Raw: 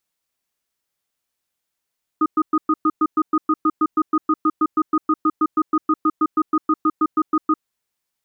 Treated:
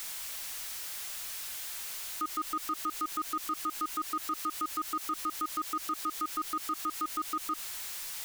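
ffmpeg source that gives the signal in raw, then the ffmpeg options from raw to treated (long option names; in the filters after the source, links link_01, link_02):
-f lavfi -i "aevalsrc='0.158*(sin(2*PI*312*t)+sin(2*PI*1240*t))*clip(min(mod(t,0.16),0.05-mod(t,0.16))/0.005,0,1)':duration=5.43:sample_rate=44100"
-af "aeval=exprs='val(0)+0.5*0.0224*sgn(val(0))':channel_layout=same,alimiter=limit=-19dB:level=0:latency=1:release=68,equalizer=frequency=210:width=0.33:gain=-13.5"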